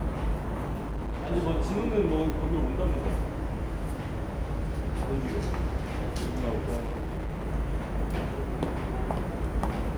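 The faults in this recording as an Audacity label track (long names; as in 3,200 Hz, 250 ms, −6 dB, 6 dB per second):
0.740000	1.320000	clipping −30 dBFS
2.300000	2.300000	click −18 dBFS
6.760000	7.460000	clipping −29.5 dBFS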